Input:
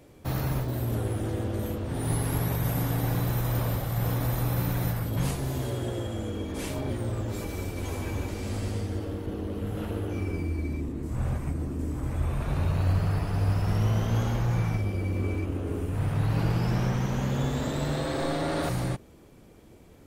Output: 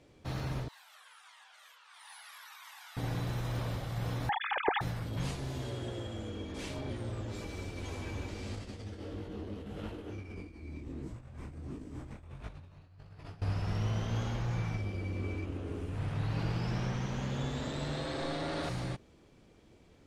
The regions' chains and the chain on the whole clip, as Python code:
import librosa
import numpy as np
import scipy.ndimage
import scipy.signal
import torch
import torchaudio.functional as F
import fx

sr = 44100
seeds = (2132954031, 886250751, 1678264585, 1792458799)

y = fx.chain(x, sr, fx.steep_highpass(hz=950.0, slope=36),
    fx.comb_cascade(direction='falling', hz=1.5), at=(0.68, 2.97))
y = fx.chain(y, sr, fx.sine_speech(),
    fx.comb(ms=2.4, depth=0.46), at=(4.29, 4.81))
y = fx.chain(y, sr, fx.over_compress(threshold_db=-32.0, ratio=-0.5),
    fx.detune_double(cents=53), at=(8.55, 13.42))
y = scipy.signal.sosfilt(scipy.signal.butter(2, 4500.0, 'lowpass', fs=sr, output='sos'), y)
y = fx.high_shelf(y, sr, hz=3200.0, db=11.0)
y = F.gain(torch.from_numpy(y), -8.0).numpy()